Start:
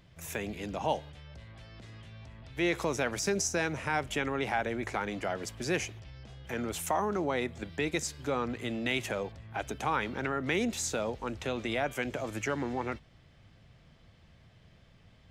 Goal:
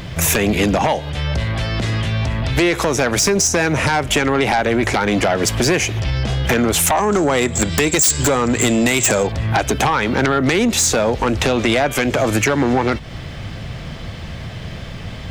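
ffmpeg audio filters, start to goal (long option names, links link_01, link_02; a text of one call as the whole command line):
ffmpeg -i in.wav -filter_complex "[0:a]acompressor=threshold=-40dB:ratio=8,asettb=1/sr,asplit=3[link_01][link_02][link_03];[link_01]atrim=end=6.974[link_04];[link_02]atrim=start=6.97:end=9.27,asetpts=PTS-STARTPTS,afade=type=in:duration=0.004:curve=qsin,afade=type=out:start_time=2.296:duration=0.004:curve=qsin,lowpass=frequency=7600:width_type=q:width=15[link_05];[link_03]atrim=start=9.266[link_06];[link_04][link_05]acrossfade=duration=0.004:curve1=hsin:curve2=qsin[link_07];[link_07][link_06]acrossfade=duration=0.004:curve1=qsin:curve2=hsin,aeval=exprs='0.168*sin(PI/2*10*val(0)/0.168)':channel_layout=same,volume=5.5dB" out.wav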